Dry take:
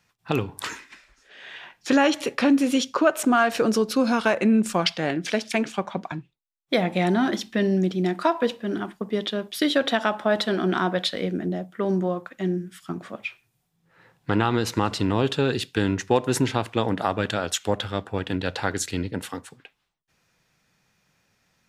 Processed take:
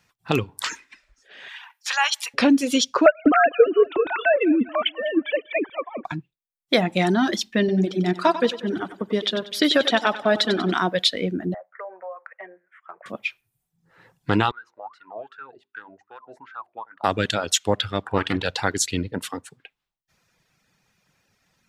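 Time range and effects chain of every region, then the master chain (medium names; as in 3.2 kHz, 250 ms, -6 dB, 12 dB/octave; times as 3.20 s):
1.48–2.34 s: elliptic high-pass 860 Hz, stop band 70 dB + treble shelf 11 kHz +7.5 dB
3.06–6.05 s: formants replaced by sine waves + feedback delay 198 ms, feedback 43%, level -14 dB
7.59–10.72 s: treble shelf 10 kHz -8 dB + feedback delay 94 ms, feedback 56%, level -7 dB
11.54–13.06 s: elliptic band-pass 540–2100 Hz + compression 3:1, threshold -35 dBFS
14.51–17.04 s: hum notches 50/100/150/200/250/300/350/400 Hz + wah-wah 2.6 Hz 630–1500 Hz, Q 12
18.03–18.44 s: peaking EQ 1.1 kHz +9.5 dB 1.4 oct + flutter echo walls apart 7.9 m, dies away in 0.21 s + loudspeaker Doppler distortion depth 0.31 ms
whole clip: reverb removal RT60 0.93 s; dynamic bell 4.9 kHz, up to +5 dB, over -41 dBFS, Q 0.72; trim +2.5 dB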